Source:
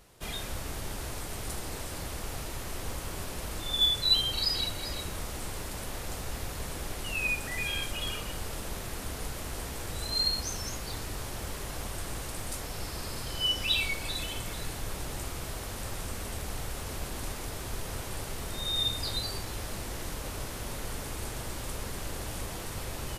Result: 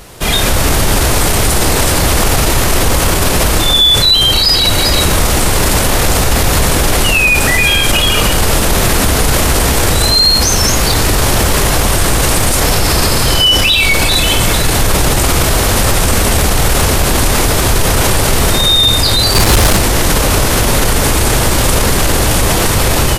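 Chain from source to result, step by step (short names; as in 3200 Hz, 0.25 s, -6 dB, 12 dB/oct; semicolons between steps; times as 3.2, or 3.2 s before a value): AGC gain up to 11.5 dB; 19.33–19.77 tube stage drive 25 dB, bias 0.25; maximiser +24 dB; gain -1 dB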